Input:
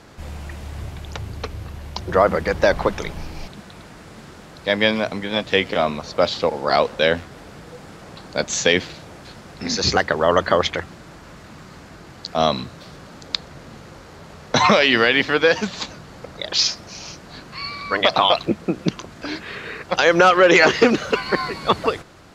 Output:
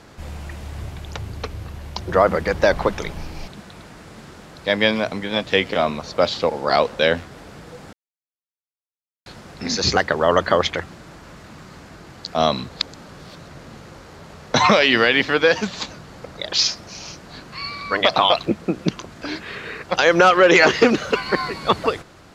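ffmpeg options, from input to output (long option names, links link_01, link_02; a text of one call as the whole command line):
ffmpeg -i in.wav -filter_complex "[0:a]asplit=5[link_01][link_02][link_03][link_04][link_05];[link_01]atrim=end=7.93,asetpts=PTS-STARTPTS,afade=type=out:start_time=7.926:duration=0.004:curve=hsin[link_06];[link_02]atrim=start=7.93:end=9.26,asetpts=PTS-STARTPTS,volume=0[link_07];[link_03]atrim=start=9.26:end=12.692,asetpts=PTS-STARTPTS,afade=type=in:duration=0.004:curve=hsin[link_08];[link_04]atrim=start=12.688:end=13.472,asetpts=PTS-STARTPTS,areverse[link_09];[link_05]atrim=start=13.468[link_10];[link_06][link_07][link_08]concat=n=3:v=0:a=1[link_11];[link_11][link_09]acrossfade=duration=0.004:curve1=hsin:curve2=hsin[link_12];[link_12][link_10]acrossfade=duration=0.004:curve1=hsin:curve2=hsin" out.wav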